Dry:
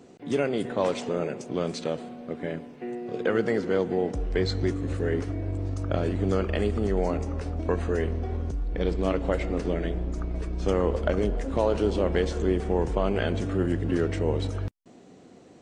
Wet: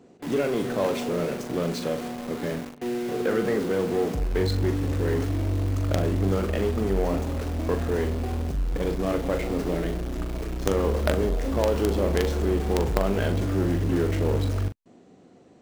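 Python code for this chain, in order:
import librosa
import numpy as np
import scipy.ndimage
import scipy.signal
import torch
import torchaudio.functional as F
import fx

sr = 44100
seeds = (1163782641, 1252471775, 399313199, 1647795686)

p1 = fx.high_shelf(x, sr, hz=2200.0, db=-4.5)
p2 = fx.quant_companded(p1, sr, bits=2)
p3 = p1 + (p2 * librosa.db_to_amplitude(-6.0))
p4 = fx.doubler(p3, sr, ms=41.0, db=-8)
y = p4 * librosa.db_to_amplitude(-2.5)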